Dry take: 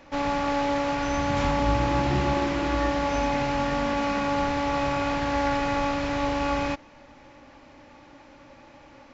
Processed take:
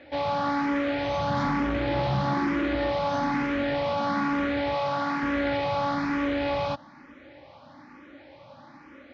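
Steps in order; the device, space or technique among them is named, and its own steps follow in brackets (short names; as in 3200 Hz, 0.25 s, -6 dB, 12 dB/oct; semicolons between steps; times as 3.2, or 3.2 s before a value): barber-pole phaser into a guitar amplifier (endless phaser +1.1 Hz; soft clip -23.5 dBFS, distortion -16 dB; speaker cabinet 100–4500 Hz, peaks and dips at 430 Hz -5 dB, 870 Hz -3 dB, 2700 Hz -6 dB); 4.75–5.23 low shelf 150 Hz -11 dB; gain +5.5 dB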